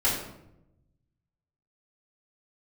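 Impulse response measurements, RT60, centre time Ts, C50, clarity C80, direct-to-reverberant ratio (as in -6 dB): 0.85 s, 46 ms, 3.5 dB, 6.5 dB, -9.0 dB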